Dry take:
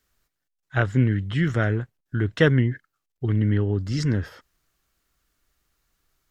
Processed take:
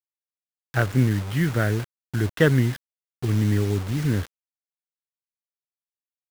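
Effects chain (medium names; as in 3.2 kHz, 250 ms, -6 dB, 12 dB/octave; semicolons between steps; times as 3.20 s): median filter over 9 samples; bit crusher 6-bit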